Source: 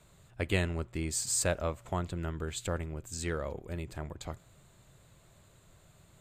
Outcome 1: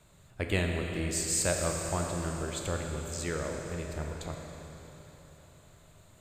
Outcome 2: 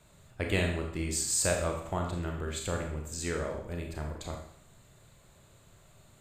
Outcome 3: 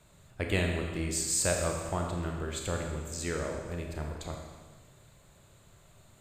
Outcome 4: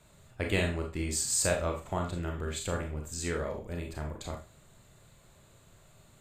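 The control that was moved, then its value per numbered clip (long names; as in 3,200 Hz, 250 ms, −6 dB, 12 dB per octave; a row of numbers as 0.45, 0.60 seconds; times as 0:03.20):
four-comb reverb, RT60: 4, 0.66, 1.5, 0.31 seconds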